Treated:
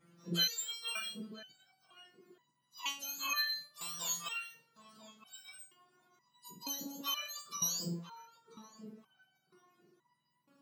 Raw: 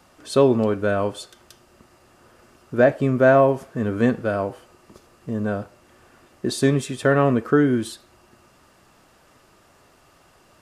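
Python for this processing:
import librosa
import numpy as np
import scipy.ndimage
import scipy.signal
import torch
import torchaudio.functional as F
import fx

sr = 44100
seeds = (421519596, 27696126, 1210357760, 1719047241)

y = fx.octave_mirror(x, sr, pivot_hz=1300.0)
y = fx.echo_filtered(y, sr, ms=989, feedback_pct=44, hz=880.0, wet_db=-8)
y = fx.resonator_held(y, sr, hz=2.1, low_hz=170.0, high_hz=970.0)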